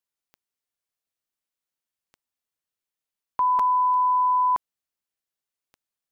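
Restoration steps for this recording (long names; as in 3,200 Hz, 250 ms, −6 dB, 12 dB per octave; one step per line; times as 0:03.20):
click removal
repair the gap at 0:03.59, 4.6 ms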